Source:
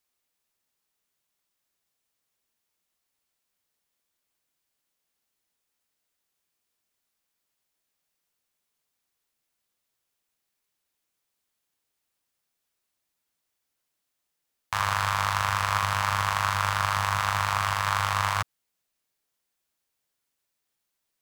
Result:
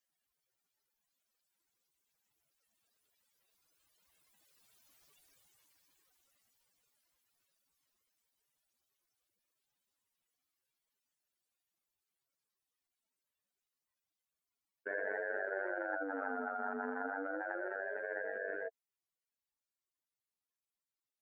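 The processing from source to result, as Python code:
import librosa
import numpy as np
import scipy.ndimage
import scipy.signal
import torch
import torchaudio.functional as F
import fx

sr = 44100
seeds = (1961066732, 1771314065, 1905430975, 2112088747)

y = fx.spec_expand(x, sr, power=3.7)
y = fx.doppler_pass(y, sr, speed_mps=11, closest_m=6.2, pass_at_s=5.01)
y = fx.ring_lfo(y, sr, carrier_hz=450.0, swing_pct=25, hz=0.27)
y = F.gain(torch.from_numpy(y), 16.5).numpy()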